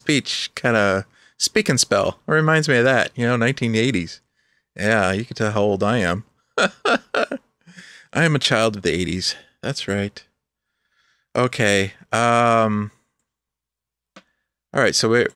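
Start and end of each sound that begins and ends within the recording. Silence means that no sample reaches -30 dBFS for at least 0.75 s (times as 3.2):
11.35–12.87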